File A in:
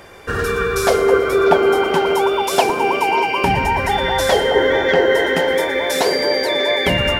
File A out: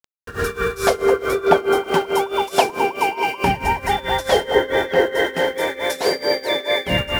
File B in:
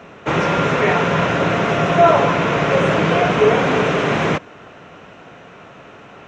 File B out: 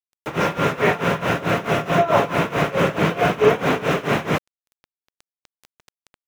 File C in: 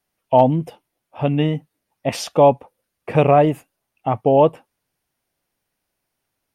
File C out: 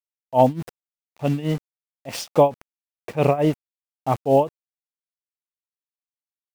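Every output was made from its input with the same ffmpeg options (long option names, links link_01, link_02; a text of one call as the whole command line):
ffmpeg -i in.wav -af "aeval=exprs='val(0)*gte(abs(val(0)),0.0316)':channel_layout=same,tremolo=f=4.6:d=0.87" out.wav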